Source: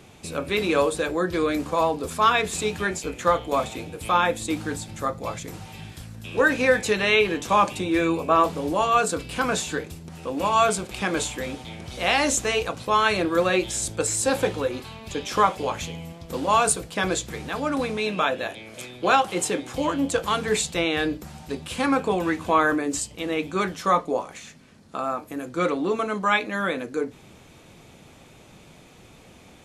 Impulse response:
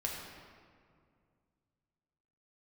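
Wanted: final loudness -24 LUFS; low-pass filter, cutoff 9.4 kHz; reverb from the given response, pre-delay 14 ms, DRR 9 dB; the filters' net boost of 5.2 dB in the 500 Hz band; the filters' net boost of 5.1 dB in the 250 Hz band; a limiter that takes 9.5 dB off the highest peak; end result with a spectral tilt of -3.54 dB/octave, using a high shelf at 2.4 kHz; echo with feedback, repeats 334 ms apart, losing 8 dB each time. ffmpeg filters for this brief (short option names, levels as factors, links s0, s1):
-filter_complex "[0:a]lowpass=9400,equalizer=f=250:t=o:g=5,equalizer=f=500:t=o:g=4.5,highshelf=f=2400:g=6,alimiter=limit=0.251:level=0:latency=1,aecho=1:1:334|668|1002|1336|1670:0.398|0.159|0.0637|0.0255|0.0102,asplit=2[s0][s1];[1:a]atrim=start_sample=2205,adelay=14[s2];[s1][s2]afir=irnorm=-1:irlink=0,volume=0.266[s3];[s0][s3]amix=inputs=2:normalize=0,volume=0.75"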